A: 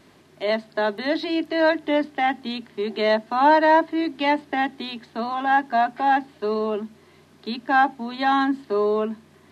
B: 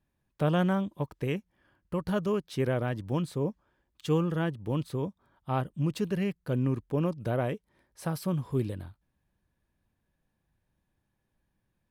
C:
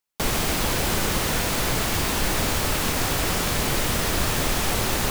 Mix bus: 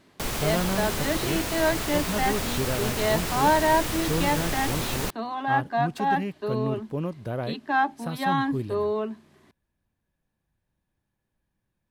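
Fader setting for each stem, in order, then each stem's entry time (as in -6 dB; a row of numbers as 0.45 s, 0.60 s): -5.0 dB, -1.5 dB, -6.0 dB; 0.00 s, 0.00 s, 0.00 s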